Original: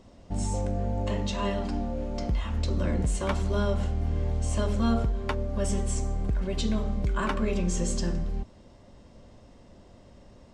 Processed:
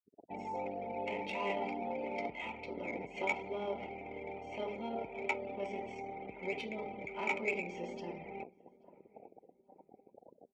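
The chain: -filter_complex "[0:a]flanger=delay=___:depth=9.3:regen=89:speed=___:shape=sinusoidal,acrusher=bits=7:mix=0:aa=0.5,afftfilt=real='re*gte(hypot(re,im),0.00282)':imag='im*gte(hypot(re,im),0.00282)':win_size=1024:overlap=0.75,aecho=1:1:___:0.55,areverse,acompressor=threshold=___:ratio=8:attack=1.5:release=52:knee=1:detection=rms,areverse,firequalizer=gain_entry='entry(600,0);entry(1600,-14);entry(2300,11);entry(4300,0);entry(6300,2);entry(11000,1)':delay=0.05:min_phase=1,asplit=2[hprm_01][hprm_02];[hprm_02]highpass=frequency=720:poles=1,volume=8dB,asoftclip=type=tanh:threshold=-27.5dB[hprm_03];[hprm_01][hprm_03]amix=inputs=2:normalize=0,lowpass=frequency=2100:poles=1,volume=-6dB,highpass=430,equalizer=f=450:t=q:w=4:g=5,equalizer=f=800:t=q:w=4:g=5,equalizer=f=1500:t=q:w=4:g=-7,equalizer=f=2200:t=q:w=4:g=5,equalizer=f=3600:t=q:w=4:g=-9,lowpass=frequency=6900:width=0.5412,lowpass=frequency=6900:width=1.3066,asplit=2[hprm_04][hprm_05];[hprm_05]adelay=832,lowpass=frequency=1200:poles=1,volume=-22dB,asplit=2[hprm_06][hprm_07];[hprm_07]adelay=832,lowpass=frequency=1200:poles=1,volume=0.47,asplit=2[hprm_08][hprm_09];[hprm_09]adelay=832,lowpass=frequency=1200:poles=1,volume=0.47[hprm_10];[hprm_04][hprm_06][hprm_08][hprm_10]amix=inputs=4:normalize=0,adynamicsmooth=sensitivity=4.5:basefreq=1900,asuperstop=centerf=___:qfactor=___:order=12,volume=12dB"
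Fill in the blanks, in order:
6.1, 1.5, 0.9, -35dB, 1100, 5.3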